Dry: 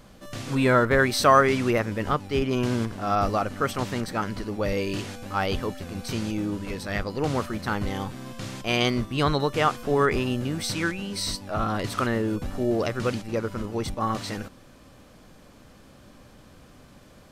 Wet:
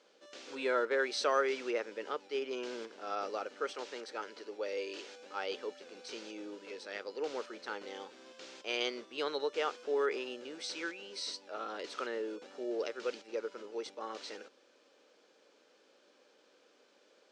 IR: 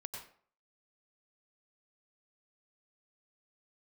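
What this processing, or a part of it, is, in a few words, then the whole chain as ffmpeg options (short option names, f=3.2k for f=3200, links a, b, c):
phone speaker on a table: -filter_complex "[0:a]asettb=1/sr,asplit=3[a][b][c];[a]atrim=end=3.714[d];[b]atrim=start=3.71:end=5.2,asetpts=PTS-STARTPTS,afade=t=in:d=0.004:c=qsin,afade=t=out:st=1.486:d=0.004:c=qsin,highpass=240[e];[c]atrim=start=5.196[f];[d][e]acrossfade=d=0.004:c1=hsin:c2=qsin[g];[g][f]acrossfade=d=0.004:c1=qsin:c2=hsin,highpass=f=380:w=0.5412,highpass=f=380:w=1.3066,equalizer=f=450:t=q:w=4:g=4,equalizer=f=700:t=q:w=4:g=-7,equalizer=f=1.1k:t=q:w=4:g=-8,equalizer=f=1.9k:t=q:w=4:g=-4,lowpass=f=6.6k:w=0.5412,lowpass=f=6.6k:w=1.3066,volume=-9dB"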